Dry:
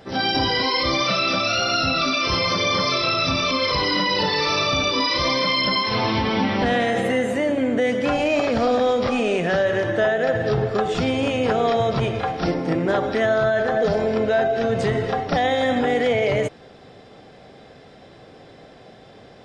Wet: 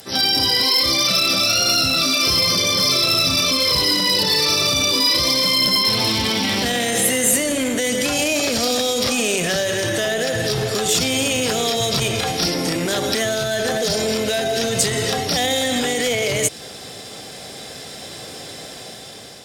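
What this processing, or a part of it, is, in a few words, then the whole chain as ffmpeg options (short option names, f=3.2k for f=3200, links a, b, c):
FM broadcast chain: -filter_complex "[0:a]highpass=51,dynaudnorm=f=570:g=5:m=9.5dB,acrossover=split=530|2100[a][b][c];[a]acompressor=threshold=-18dB:ratio=4[d];[b]acompressor=threshold=-28dB:ratio=4[e];[c]acompressor=threshold=-28dB:ratio=4[f];[d][e][f]amix=inputs=3:normalize=0,aemphasis=mode=production:type=75fm,alimiter=limit=-12.5dB:level=0:latency=1:release=22,asoftclip=type=hard:threshold=-16dB,lowpass=f=15k:w=0.5412,lowpass=f=15k:w=1.3066,aemphasis=mode=production:type=75fm"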